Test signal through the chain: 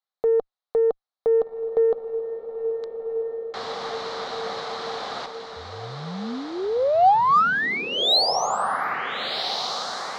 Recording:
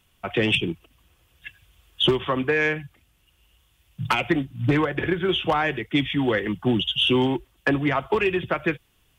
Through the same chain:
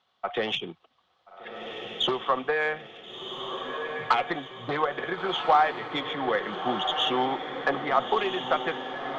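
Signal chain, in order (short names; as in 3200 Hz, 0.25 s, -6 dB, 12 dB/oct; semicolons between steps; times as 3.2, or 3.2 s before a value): speaker cabinet 280–4900 Hz, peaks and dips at 310 Hz -9 dB, 530 Hz +3 dB, 760 Hz +10 dB, 1200 Hz +8 dB, 2600 Hz -9 dB, 4000 Hz +8 dB; added harmonics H 7 -42 dB, 8 -37 dB, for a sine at -3.5 dBFS; diffused feedback echo 1.394 s, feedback 48%, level -6.5 dB; gain -4.5 dB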